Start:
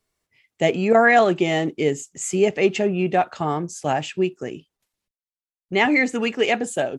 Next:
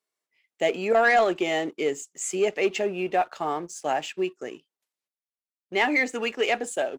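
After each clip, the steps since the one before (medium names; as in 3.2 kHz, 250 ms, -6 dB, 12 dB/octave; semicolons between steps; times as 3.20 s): high-pass 350 Hz 12 dB/octave; waveshaping leveller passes 1; trim -6.5 dB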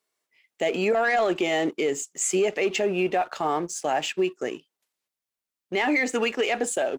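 peak limiter -22 dBFS, peak gain reduction 10.5 dB; trim +6 dB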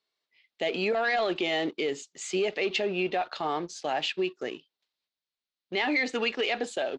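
resonant low-pass 4.1 kHz, resonance Q 3.1; trim -5 dB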